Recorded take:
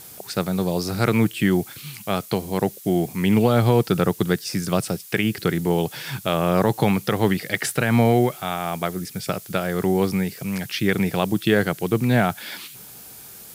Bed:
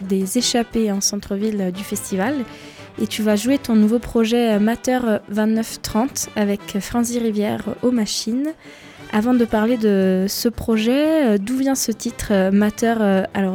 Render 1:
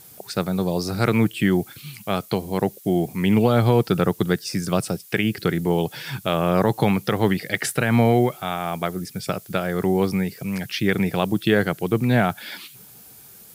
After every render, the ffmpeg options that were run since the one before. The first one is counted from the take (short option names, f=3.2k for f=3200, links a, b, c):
-af "afftdn=nr=6:nf=-42"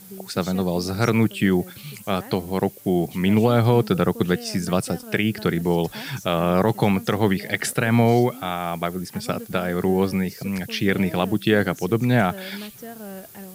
-filter_complex "[1:a]volume=-20.5dB[a];[0:a][a]amix=inputs=2:normalize=0"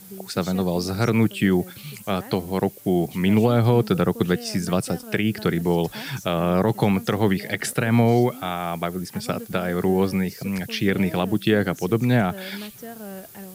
-filter_complex "[0:a]acrossover=split=500[a][b];[b]acompressor=threshold=-22dB:ratio=6[c];[a][c]amix=inputs=2:normalize=0"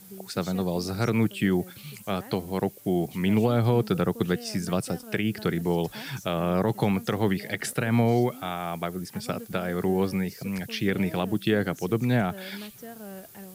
-af "volume=-4.5dB"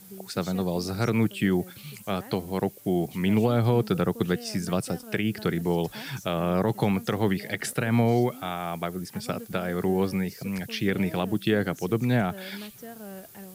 -af anull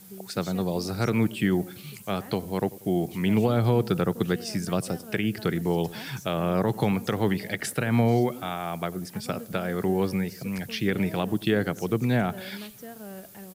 -filter_complex "[0:a]asplit=2[a][b];[b]adelay=94,lowpass=f=880:p=1,volume=-18dB,asplit=2[c][d];[d]adelay=94,lowpass=f=880:p=1,volume=0.5,asplit=2[e][f];[f]adelay=94,lowpass=f=880:p=1,volume=0.5,asplit=2[g][h];[h]adelay=94,lowpass=f=880:p=1,volume=0.5[i];[a][c][e][g][i]amix=inputs=5:normalize=0"